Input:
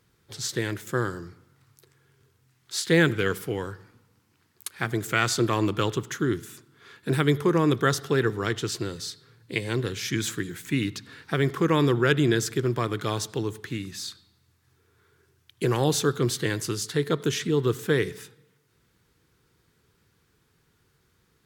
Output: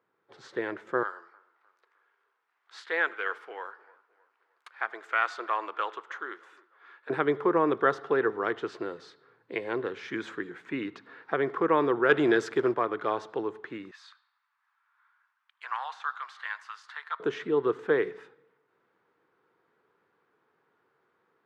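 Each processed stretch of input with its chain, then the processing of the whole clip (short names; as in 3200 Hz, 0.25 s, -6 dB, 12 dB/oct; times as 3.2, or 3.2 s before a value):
1.03–7.1 HPF 920 Hz + dark delay 0.306 s, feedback 41%, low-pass 1600 Hz, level -23 dB
12.09–12.74 high shelf 3900 Hz +10 dB + sample leveller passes 1
13.91–17.2 de-esser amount 60% + steep high-pass 950 Hz + analogue delay 80 ms, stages 1024, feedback 72%, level -23 dB
whole clip: LPF 1200 Hz 12 dB/oct; AGC gain up to 5 dB; HPF 530 Hz 12 dB/oct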